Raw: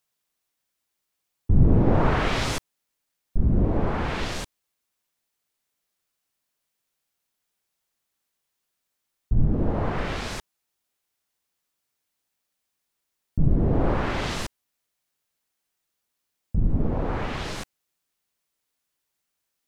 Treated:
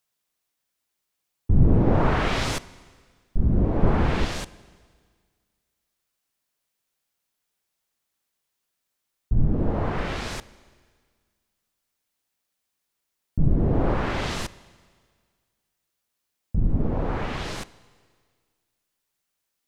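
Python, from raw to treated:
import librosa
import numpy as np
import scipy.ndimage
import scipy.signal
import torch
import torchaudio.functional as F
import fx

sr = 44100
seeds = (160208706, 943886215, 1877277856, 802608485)

y = fx.low_shelf(x, sr, hz=470.0, db=7.5, at=(3.83, 4.25))
y = fx.rev_schroeder(y, sr, rt60_s=1.8, comb_ms=33, drr_db=18.5)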